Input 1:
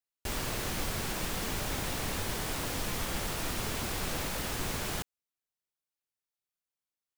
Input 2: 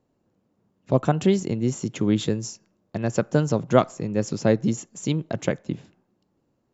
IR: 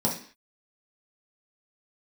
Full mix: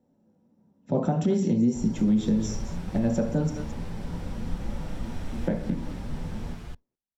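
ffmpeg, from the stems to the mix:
-filter_complex "[0:a]aemphasis=mode=reproduction:type=bsi,asplit=2[link_01][link_02];[link_02]adelay=7.2,afreqshift=2.9[link_03];[link_01][link_03]amix=inputs=2:normalize=1,adelay=1500,volume=-6dB,asplit=3[link_04][link_05][link_06];[link_05]volume=-13dB[link_07];[link_06]volume=-3dB[link_08];[1:a]volume=-10.5dB,asplit=3[link_09][link_10][link_11];[link_09]atrim=end=3.5,asetpts=PTS-STARTPTS,afade=type=out:start_time=3.496:duration=0.004:curve=hsin[link_12];[link_10]atrim=start=3.5:end=5.47,asetpts=PTS-STARTPTS,volume=0[link_13];[link_11]atrim=start=5.47,asetpts=PTS-STARTPTS,afade=type=in:duration=0.004:curve=hsin[link_14];[link_12][link_13][link_14]concat=n=3:v=0:a=1,asplit=4[link_15][link_16][link_17][link_18];[link_16]volume=-3.5dB[link_19];[link_17]volume=-7dB[link_20];[link_18]apad=whole_len=382866[link_21];[link_04][link_21]sidechaincompress=threshold=-47dB:ratio=8:attack=16:release=1500[link_22];[2:a]atrim=start_sample=2205[link_23];[link_07][link_19]amix=inputs=2:normalize=0[link_24];[link_24][link_23]afir=irnorm=-1:irlink=0[link_25];[link_08][link_20]amix=inputs=2:normalize=0,aecho=0:1:218:1[link_26];[link_22][link_15][link_25][link_26]amix=inputs=4:normalize=0,alimiter=limit=-15dB:level=0:latency=1:release=202"

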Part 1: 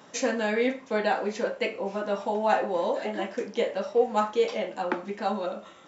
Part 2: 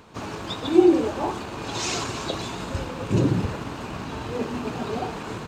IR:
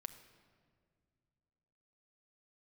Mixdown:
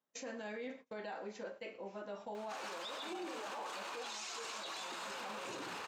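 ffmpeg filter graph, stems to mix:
-filter_complex "[0:a]lowshelf=frequency=94:gain=-6,volume=-15dB,asplit=2[link_01][link_02];[link_02]volume=-22.5dB[link_03];[1:a]highpass=880,adelay=2350,volume=0dB[link_04];[link_03]aecho=0:1:120|240|360|480|600|720|840:1|0.48|0.23|0.111|0.0531|0.0255|0.0122[link_05];[link_01][link_04][link_05]amix=inputs=3:normalize=0,agate=range=-25dB:threshold=-51dB:ratio=16:detection=peak,alimiter=level_in=12dB:limit=-24dB:level=0:latency=1:release=26,volume=-12dB"

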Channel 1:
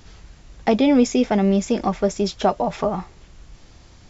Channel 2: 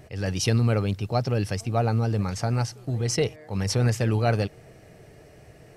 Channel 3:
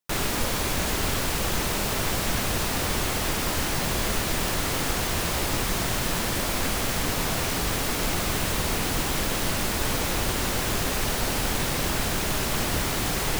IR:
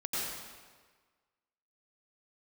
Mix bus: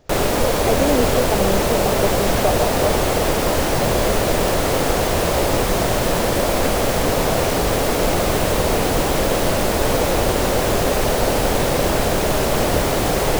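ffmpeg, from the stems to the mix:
-filter_complex "[0:a]volume=-11dB[link_01];[1:a]volume=-15dB[link_02];[2:a]lowshelf=frequency=230:gain=4,volume=3dB[link_03];[link_01][link_02][link_03]amix=inputs=3:normalize=0,equalizer=frequency=550:width=1:gain=12"

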